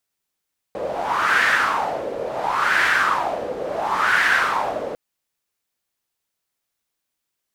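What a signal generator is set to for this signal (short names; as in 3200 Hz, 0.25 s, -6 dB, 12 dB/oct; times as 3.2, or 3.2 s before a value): wind-like swept noise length 4.20 s, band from 510 Hz, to 1700 Hz, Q 4.8, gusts 3, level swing 10.5 dB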